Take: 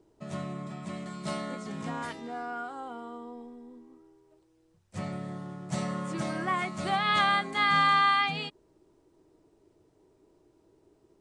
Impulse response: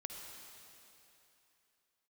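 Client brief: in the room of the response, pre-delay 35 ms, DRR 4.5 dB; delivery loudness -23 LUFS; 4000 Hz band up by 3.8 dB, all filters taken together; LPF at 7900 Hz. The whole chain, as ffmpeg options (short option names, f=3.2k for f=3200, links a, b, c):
-filter_complex "[0:a]lowpass=7.9k,equalizer=f=4k:t=o:g=5,asplit=2[a][b];[1:a]atrim=start_sample=2205,adelay=35[c];[b][c]afir=irnorm=-1:irlink=0,volume=-2.5dB[d];[a][d]amix=inputs=2:normalize=0,volume=4dB"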